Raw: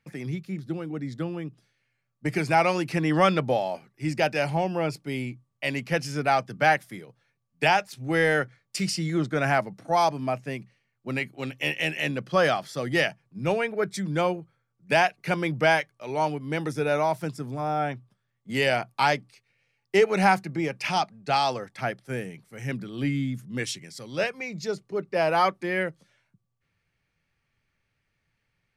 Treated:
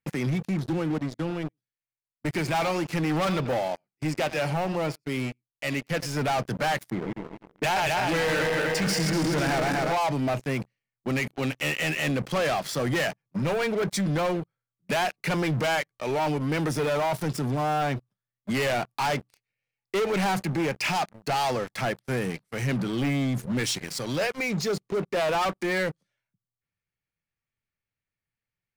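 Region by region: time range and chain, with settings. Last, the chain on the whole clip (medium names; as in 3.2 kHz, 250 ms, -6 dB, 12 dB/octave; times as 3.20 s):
0.98–6.17 s: delay 90 ms -18 dB + upward expansion, over -43 dBFS
6.90–9.93 s: backward echo that repeats 123 ms, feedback 74%, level -4 dB + level-controlled noise filter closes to 670 Hz, open at -20.5 dBFS
whole clip: waveshaping leveller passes 5; peak limiter -16 dBFS; trim -6 dB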